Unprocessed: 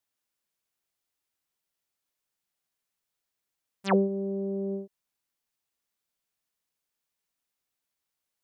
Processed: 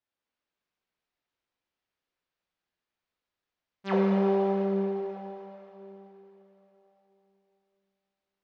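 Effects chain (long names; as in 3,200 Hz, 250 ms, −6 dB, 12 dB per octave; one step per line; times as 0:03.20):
0:04.13–0:04.54: ceiling on every frequency bin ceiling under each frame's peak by 29 dB
mains-hum notches 50/100/150/200 Hz
in parallel at −1 dB: downward compressor, threshold −31 dBFS, peak gain reduction 11.5 dB
on the sum: high-frequency loss of the air 200 metres
dense smooth reverb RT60 3.8 s, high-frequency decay 1×, DRR −4.5 dB
level −7.5 dB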